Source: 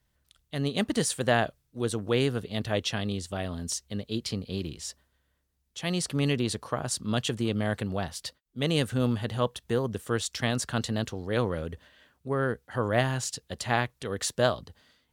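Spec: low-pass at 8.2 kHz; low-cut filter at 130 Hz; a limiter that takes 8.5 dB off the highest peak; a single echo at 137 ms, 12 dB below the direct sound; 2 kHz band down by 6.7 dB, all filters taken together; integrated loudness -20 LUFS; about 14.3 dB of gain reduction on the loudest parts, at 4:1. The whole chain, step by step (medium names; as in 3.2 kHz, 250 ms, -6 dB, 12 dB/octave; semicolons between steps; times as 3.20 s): high-pass 130 Hz; low-pass 8.2 kHz; peaking EQ 2 kHz -9 dB; compression 4:1, threshold -38 dBFS; peak limiter -30.5 dBFS; delay 137 ms -12 dB; trim +23 dB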